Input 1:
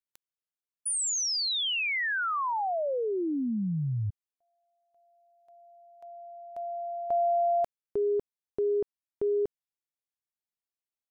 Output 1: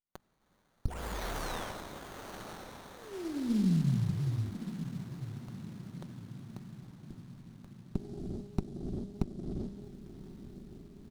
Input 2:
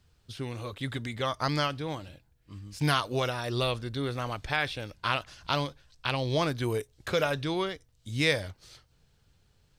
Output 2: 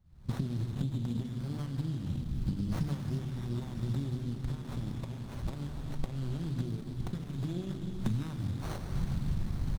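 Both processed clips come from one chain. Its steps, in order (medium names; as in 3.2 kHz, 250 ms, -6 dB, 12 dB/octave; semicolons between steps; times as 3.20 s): recorder AGC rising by 76 dB/s, up to +36 dB; low-pass 3.1 kHz 6 dB/octave; hum notches 50/100/150/200/250/300/350 Hz; gated-style reverb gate 460 ms flat, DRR 5 dB; compression 6:1, threshold -26 dBFS; inverse Chebyshev band-stop 640–1700 Hz, stop band 60 dB; comb 5.3 ms, depth 34%; on a send: echo that smears into a reverb 1102 ms, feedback 58%, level -11 dB; on the sum: sliding maximum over 17 samples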